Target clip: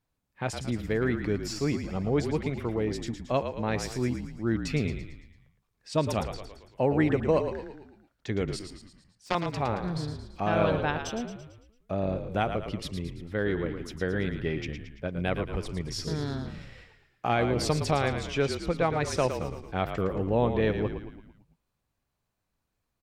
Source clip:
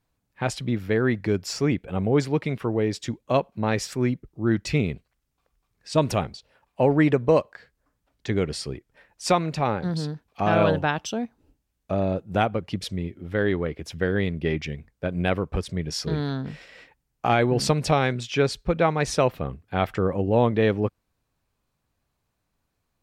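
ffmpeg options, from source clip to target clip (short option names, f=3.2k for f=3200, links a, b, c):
-filter_complex "[0:a]asettb=1/sr,asplit=3[a][b][c];[a]atrim=end=8.594[d];[b]atrim=start=8.59:end=9.35,asetpts=PTS-STARTPTS,afade=t=in:d=0.004:c=qsin,afade=t=out:st=0.756:d=0.004:c=qsin,aeval=exprs='0.398*(cos(1*acos(clip(val(0)/0.398,-1,1)))-cos(1*PI/2))+0.158*(cos(3*acos(clip(val(0)/0.398,-1,1)))-cos(3*PI/2))':c=same[e];[c]atrim=start=9.346[f];[d][e]acrossfade=d=0.004:c1=hsin:c2=qsin[g];[g][f]acrossfade=d=0.004:c1=qsin:c2=hsin,asplit=7[h][i][j][k][l][m][n];[i]adelay=112,afreqshift=-45,volume=-8dB[o];[j]adelay=224,afreqshift=-90,volume=-13.8dB[p];[k]adelay=336,afreqshift=-135,volume=-19.7dB[q];[l]adelay=448,afreqshift=-180,volume=-25.5dB[r];[m]adelay=560,afreqshift=-225,volume=-31.4dB[s];[n]adelay=672,afreqshift=-270,volume=-37.2dB[t];[h][o][p][q][r][s][t]amix=inputs=7:normalize=0,volume=-5.5dB"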